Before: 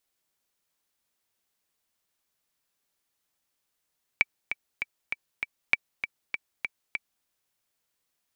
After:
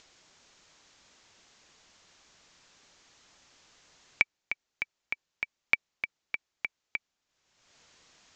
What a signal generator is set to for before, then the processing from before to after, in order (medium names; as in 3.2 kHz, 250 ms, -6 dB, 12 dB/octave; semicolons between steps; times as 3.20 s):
metronome 197 bpm, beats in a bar 5, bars 2, 2.31 kHz, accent 9.5 dB -6.5 dBFS
steep low-pass 7.3 kHz 72 dB/octave; upward compressor, threshold -43 dBFS